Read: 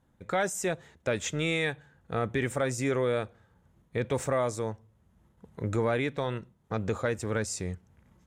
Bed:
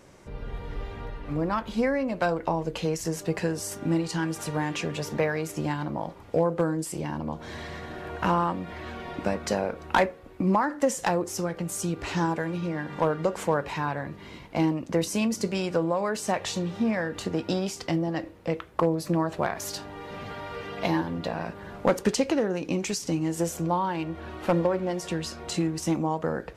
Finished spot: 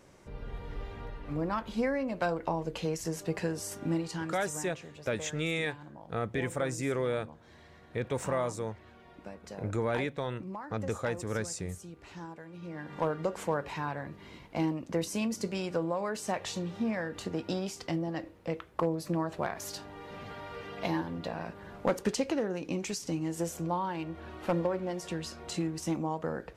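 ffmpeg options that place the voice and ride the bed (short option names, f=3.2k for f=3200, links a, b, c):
-filter_complex "[0:a]adelay=4000,volume=-3.5dB[a];[1:a]volume=7dB,afade=t=out:st=3.87:d=0.84:silence=0.223872,afade=t=in:st=12.5:d=0.52:silence=0.251189[b];[a][b]amix=inputs=2:normalize=0"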